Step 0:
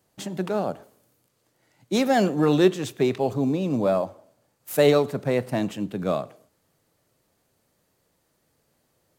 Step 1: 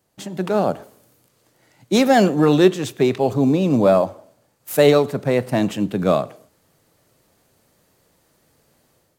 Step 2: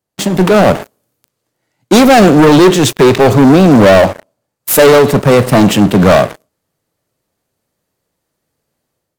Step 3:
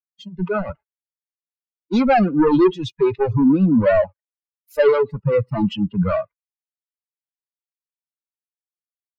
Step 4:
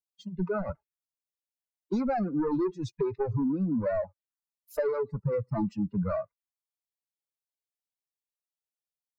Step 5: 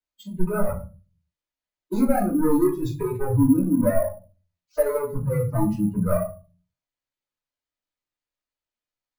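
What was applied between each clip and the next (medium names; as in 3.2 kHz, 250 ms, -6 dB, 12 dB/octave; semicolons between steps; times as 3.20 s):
level rider gain up to 8.5 dB
waveshaping leveller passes 5
expander on every frequency bin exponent 3; distance through air 300 m; trim -4 dB
compression 6:1, threshold -24 dBFS, peak gain reduction 12.5 dB; touch-sensitive phaser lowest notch 250 Hz, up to 3.1 kHz, full sweep at -29 dBFS; trim -2.5 dB
simulated room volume 150 m³, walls furnished, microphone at 2.8 m; careless resampling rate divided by 4×, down filtered, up hold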